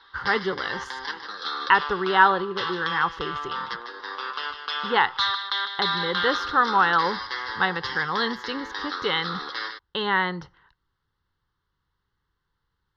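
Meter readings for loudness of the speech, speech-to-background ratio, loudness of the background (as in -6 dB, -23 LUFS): -24.5 LUFS, 5.5 dB, -30.0 LUFS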